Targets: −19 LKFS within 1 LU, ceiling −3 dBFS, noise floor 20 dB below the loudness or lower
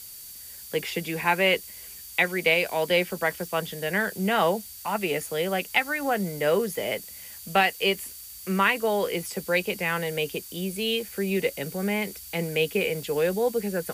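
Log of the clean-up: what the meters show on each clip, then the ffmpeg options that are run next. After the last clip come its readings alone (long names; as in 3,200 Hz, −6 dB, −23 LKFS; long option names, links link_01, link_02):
interfering tone 4,600 Hz; level of the tone −52 dBFS; background noise floor −43 dBFS; target noise floor −46 dBFS; integrated loudness −26.0 LKFS; sample peak −8.0 dBFS; target loudness −19.0 LKFS
→ -af "bandreject=frequency=4600:width=30"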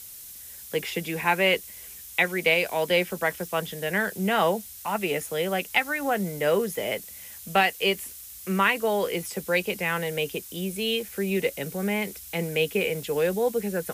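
interfering tone none found; background noise floor −43 dBFS; target noise floor −46 dBFS
→ -af "afftdn=noise_reduction=6:noise_floor=-43"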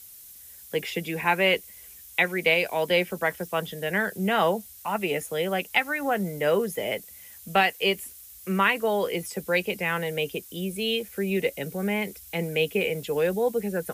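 background noise floor −47 dBFS; integrated loudness −26.0 LKFS; sample peak −8.0 dBFS; target loudness −19.0 LKFS
→ -af "volume=7dB,alimiter=limit=-3dB:level=0:latency=1"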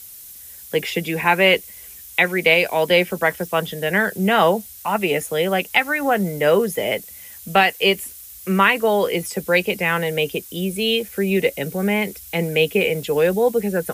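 integrated loudness −19.5 LKFS; sample peak −3.0 dBFS; background noise floor −40 dBFS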